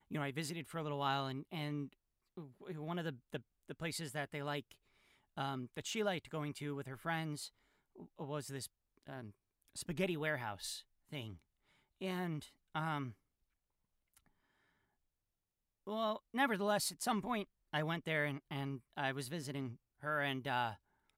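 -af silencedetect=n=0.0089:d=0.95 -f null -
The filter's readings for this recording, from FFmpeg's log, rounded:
silence_start: 13.09
silence_end: 15.87 | silence_duration: 2.78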